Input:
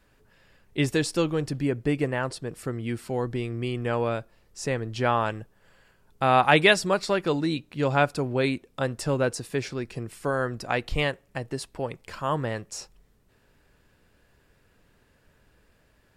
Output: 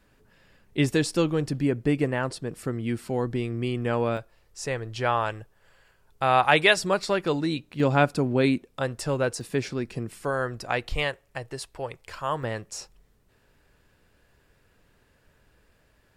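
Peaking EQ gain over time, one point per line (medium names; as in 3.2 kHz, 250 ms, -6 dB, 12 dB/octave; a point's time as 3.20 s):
peaking EQ 220 Hz 1.2 oct
+3 dB
from 4.17 s -8 dB
from 6.77 s -1 dB
from 7.80 s +6.5 dB
from 8.65 s -3.5 dB
from 9.41 s +4 dB
from 10.24 s -4.5 dB
from 10.93 s -11 dB
from 12.43 s -2 dB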